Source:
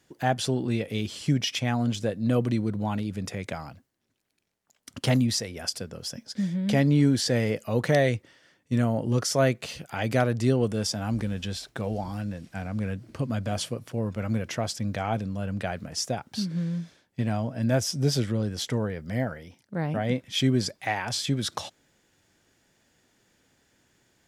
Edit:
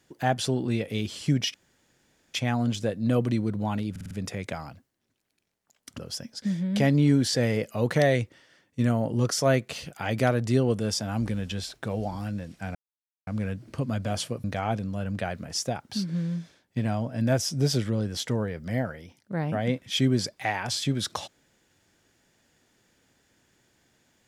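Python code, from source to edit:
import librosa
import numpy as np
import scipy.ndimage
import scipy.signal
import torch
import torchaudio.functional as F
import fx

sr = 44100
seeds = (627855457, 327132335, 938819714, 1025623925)

y = fx.edit(x, sr, fx.insert_room_tone(at_s=1.54, length_s=0.8),
    fx.stutter(start_s=3.11, slice_s=0.05, count=5),
    fx.cut(start_s=4.99, length_s=0.93),
    fx.insert_silence(at_s=12.68, length_s=0.52),
    fx.cut(start_s=13.85, length_s=1.01), tone=tone)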